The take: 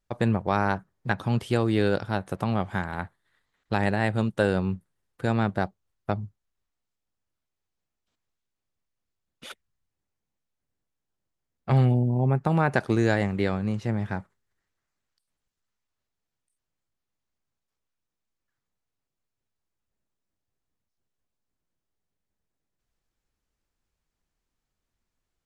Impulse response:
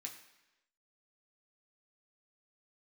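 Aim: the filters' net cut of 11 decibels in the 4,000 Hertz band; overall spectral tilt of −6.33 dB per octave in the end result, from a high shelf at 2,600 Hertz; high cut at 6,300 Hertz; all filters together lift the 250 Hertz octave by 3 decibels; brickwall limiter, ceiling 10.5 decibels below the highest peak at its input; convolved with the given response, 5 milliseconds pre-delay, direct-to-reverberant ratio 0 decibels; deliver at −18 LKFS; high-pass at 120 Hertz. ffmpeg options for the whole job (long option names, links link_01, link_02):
-filter_complex "[0:a]highpass=120,lowpass=6300,equalizer=frequency=250:width_type=o:gain=4.5,highshelf=frequency=2600:gain=-8,equalizer=frequency=4000:width_type=o:gain=-7,alimiter=limit=-18dB:level=0:latency=1,asplit=2[link_01][link_02];[1:a]atrim=start_sample=2205,adelay=5[link_03];[link_02][link_03]afir=irnorm=-1:irlink=0,volume=3.5dB[link_04];[link_01][link_04]amix=inputs=2:normalize=0,volume=8.5dB"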